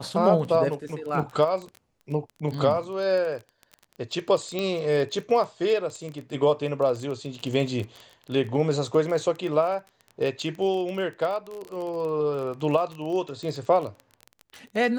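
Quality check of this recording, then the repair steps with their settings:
surface crackle 22 per second −31 dBFS
0:04.59: click −15 dBFS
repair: click removal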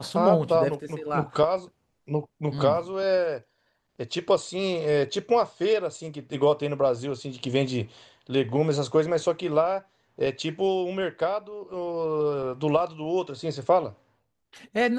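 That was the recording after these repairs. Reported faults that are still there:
none of them is left

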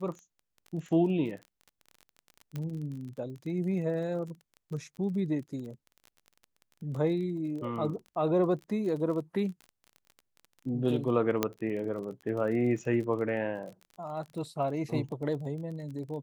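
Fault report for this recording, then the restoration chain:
surface crackle 29 per second −39 dBFS
0:02.56: click −24 dBFS
0:11.43: click −11 dBFS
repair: click removal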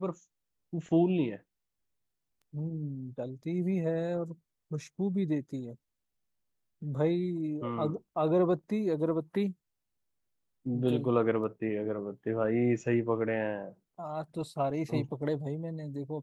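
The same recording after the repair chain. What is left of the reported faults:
0:11.43: click

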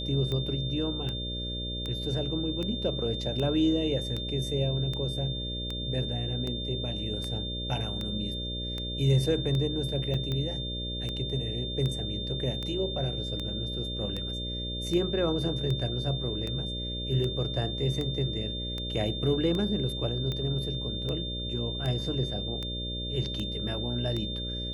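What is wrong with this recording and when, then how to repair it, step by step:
mains buzz 60 Hz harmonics 10 −36 dBFS
scratch tick 78 rpm −21 dBFS
whistle 3,600 Hz −35 dBFS
0:10.14: drop-out 4.4 ms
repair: click removal
hum removal 60 Hz, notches 10
notch filter 3,600 Hz, Q 30
repair the gap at 0:10.14, 4.4 ms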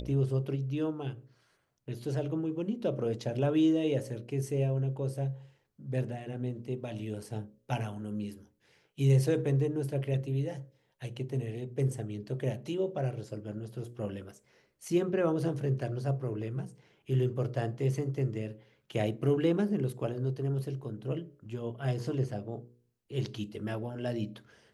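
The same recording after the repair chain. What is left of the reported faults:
none of them is left

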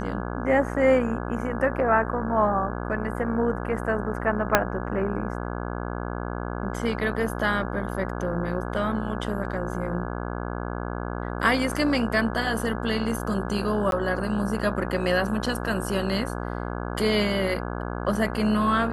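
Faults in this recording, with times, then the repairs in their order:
mains buzz 60 Hz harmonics 28 −31 dBFS
0:04.55: click −1 dBFS
0:13.91–0:13.92: drop-out 12 ms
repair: click removal
hum removal 60 Hz, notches 28
repair the gap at 0:13.91, 12 ms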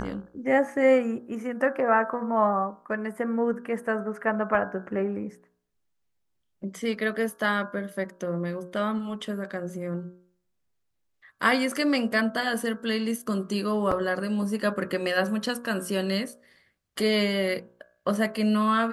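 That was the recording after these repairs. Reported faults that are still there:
0:04.55: click

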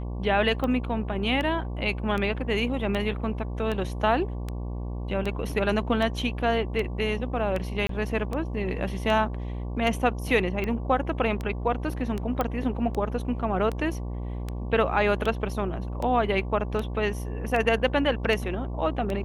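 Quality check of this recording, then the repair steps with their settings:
mains buzz 60 Hz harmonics 19 −32 dBFS
scratch tick 78 rpm −18 dBFS
0:07.87–0:07.89: drop-out 23 ms
0:12.41: click −13 dBFS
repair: click removal
hum removal 60 Hz, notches 19
repair the gap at 0:07.87, 23 ms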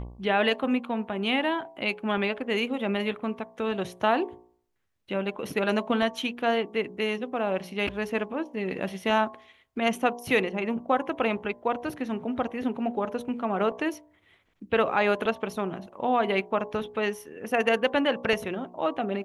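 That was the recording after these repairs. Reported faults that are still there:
none of them is left

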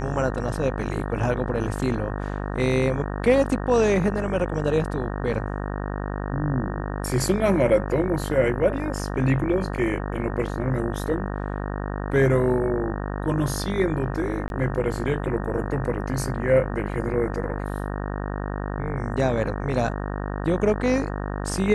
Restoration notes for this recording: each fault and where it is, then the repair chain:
mains buzz 50 Hz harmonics 37 −29 dBFS
0:14.48–0:14.50: drop-out 21 ms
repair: hum removal 50 Hz, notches 37
repair the gap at 0:14.48, 21 ms

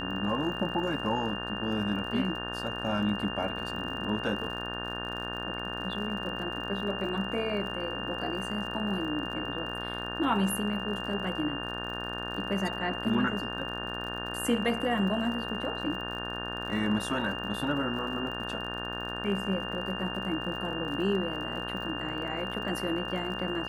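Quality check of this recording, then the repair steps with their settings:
mains buzz 60 Hz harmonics 30 −38 dBFS
surface crackle 51 per second −39 dBFS
whistle 2,800 Hz −37 dBFS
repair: click removal
hum removal 60 Hz, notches 30
notch filter 2,800 Hz, Q 30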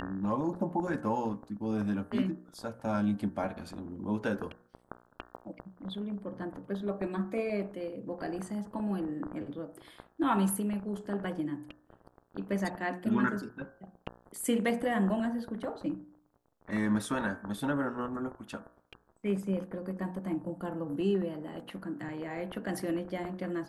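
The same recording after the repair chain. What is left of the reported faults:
none of them is left

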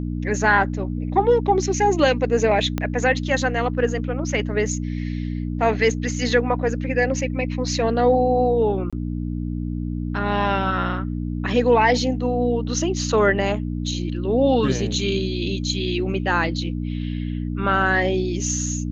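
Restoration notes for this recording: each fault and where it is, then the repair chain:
mains hum 60 Hz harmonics 5 −26 dBFS
0:02.78: click −10 dBFS
0:08.90–0:08.93: drop-out 26 ms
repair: click removal
hum removal 60 Hz, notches 5
repair the gap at 0:08.90, 26 ms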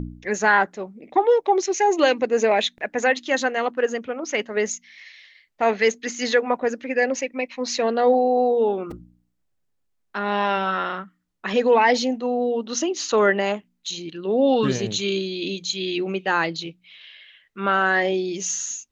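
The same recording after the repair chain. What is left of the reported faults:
0:02.78: click

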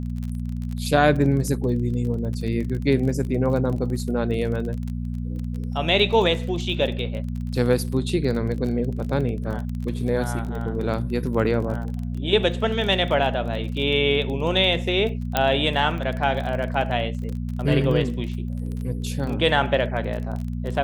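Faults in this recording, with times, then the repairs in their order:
surface crackle 25 per second −29 dBFS
mains hum 60 Hz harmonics 4 −28 dBFS
0:15.37: click −5 dBFS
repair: click removal
hum removal 60 Hz, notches 4

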